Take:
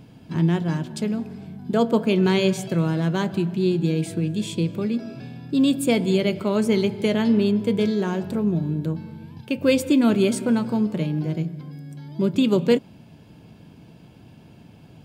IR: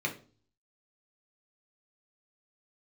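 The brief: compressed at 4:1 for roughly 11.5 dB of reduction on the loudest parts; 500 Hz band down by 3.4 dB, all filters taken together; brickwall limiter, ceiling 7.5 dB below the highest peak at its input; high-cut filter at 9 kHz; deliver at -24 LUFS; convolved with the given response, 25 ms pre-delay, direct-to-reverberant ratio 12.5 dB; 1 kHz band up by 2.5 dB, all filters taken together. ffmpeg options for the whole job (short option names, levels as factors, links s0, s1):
-filter_complex "[0:a]lowpass=9000,equalizer=f=500:t=o:g=-5.5,equalizer=f=1000:t=o:g=5,acompressor=threshold=0.0316:ratio=4,alimiter=level_in=1.19:limit=0.0631:level=0:latency=1,volume=0.841,asplit=2[s0][s1];[1:a]atrim=start_sample=2205,adelay=25[s2];[s1][s2]afir=irnorm=-1:irlink=0,volume=0.112[s3];[s0][s3]amix=inputs=2:normalize=0,volume=3.35"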